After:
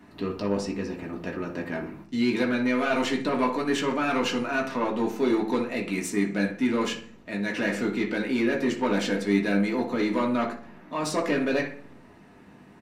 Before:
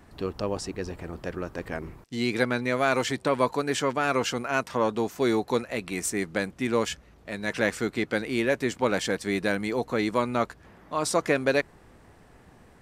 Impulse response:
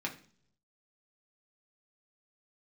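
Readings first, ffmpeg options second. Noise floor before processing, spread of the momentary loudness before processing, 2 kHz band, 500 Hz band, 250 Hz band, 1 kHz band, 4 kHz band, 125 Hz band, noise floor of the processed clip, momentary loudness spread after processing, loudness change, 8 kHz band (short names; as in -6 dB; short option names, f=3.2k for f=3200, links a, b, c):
-55 dBFS, 10 LU, -0.5 dB, -1.0 dB, +4.5 dB, -1.0 dB, -0.5 dB, -0.5 dB, -51 dBFS, 9 LU, +0.5 dB, -4.5 dB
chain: -filter_complex "[0:a]asplit=2[a][b];[b]adelay=60,lowpass=f=2.4k:p=1,volume=-11dB,asplit=2[c][d];[d]adelay=60,lowpass=f=2.4k:p=1,volume=0.41,asplit=2[e][f];[f]adelay=60,lowpass=f=2.4k:p=1,volume=0.41,asplit=2[g][h];[h]adelay=60,lowpass=f=2.4k:p=1,volume=0.41[i];[a][c][e][g][i]amix=inputs=5:normalize=0,asoftclip=type=tanh:threshold=-19.5dB[j];[1:a]atrim=start_sample=2205,asetrate=48510,aresample=44100[k];[j][k]afir=irnorm=-1:irlink=0"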